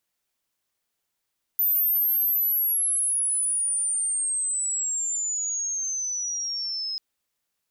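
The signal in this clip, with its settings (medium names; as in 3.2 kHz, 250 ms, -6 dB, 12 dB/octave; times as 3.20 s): sweep logarithmic 14 kHz -> 5.1 kHz -19 dBFS -> -27.5 dBFS 5.39 s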